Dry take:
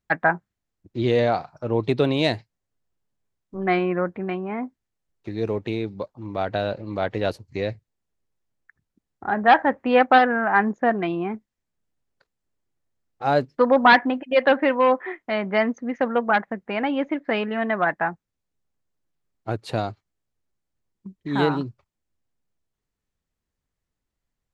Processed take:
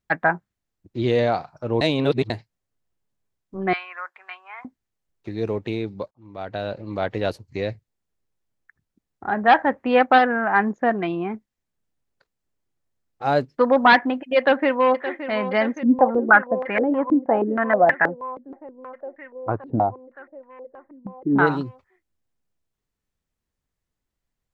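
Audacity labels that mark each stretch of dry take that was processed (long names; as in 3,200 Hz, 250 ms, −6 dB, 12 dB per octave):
1.810000	2.300000	reverse
3.730000	4.650000	high-pass filter 1,000 Hz 24 dB per octave
6.110000	6.910000	fade in, from −21 dB
14.370000	15.180000	delay throw 570 ms, feedback 80%, level −12 dB
15.830000	21.470000	low-pass on a step sequencer 6.3 Hz 270–1,900 Hz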